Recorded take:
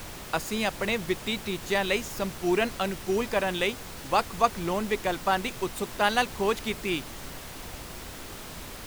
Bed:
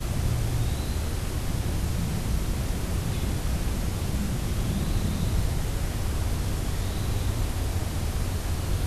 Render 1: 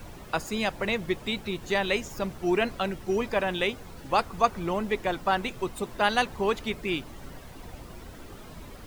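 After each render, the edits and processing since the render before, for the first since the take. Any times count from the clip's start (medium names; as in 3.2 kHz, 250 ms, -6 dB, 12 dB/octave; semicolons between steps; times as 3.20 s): noise reduction 11 dB, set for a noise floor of -41 dBFS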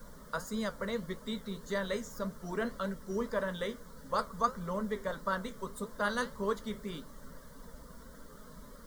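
flange 1.7 Hz, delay 9.5 ms, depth 7.6 ms, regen -66%; static phaser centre 510 Hz, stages 8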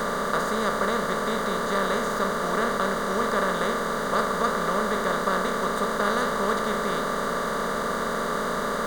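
spectral levelling over time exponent 0.2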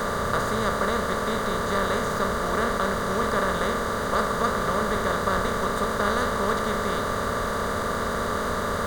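add bed -9.5 dB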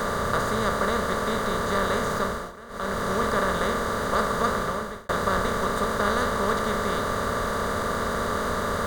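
2.08–3.13 s: dip -19 dB, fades 0.45 s equal-power; 4.54–5.09 s: fade out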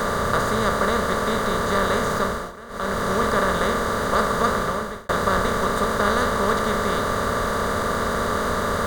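trim +3.5 dB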